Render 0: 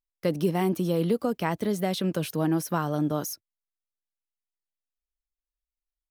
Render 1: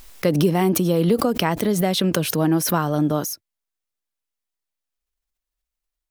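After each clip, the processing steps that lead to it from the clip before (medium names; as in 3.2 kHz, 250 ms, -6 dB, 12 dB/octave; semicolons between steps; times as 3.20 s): swell ahead of each attack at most 55 dB/s; trim +6 dB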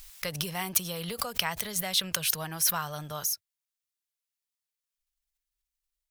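amplifier tone stack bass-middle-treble 10-0-10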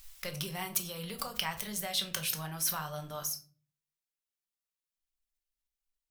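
simulated room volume 290 m³, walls furnished, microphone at 1.1 m; trim -6.5 dB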